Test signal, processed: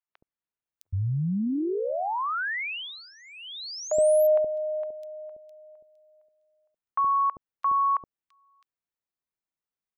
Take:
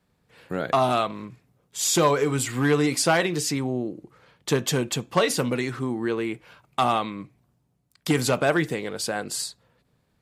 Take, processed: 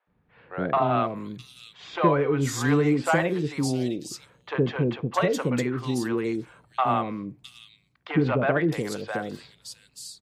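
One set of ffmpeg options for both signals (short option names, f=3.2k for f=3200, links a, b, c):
-filter_complex "[0:a]equalizer=f=11k:t=o:w=2.5:g=-13.5,acrossover=split=570|3500[a][b][c];[a]adelay=70[d];[c]adelay=660[e];[d][b][e]amix=inputs=3:normalize=0,volume=1.5dB"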